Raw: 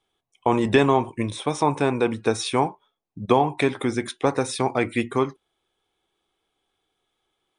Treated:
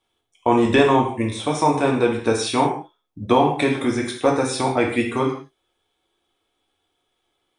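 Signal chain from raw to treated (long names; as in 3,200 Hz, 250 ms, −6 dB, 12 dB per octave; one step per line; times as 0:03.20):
reverb whose tail is shaped and stops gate 200 ms falling, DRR −0.5 dB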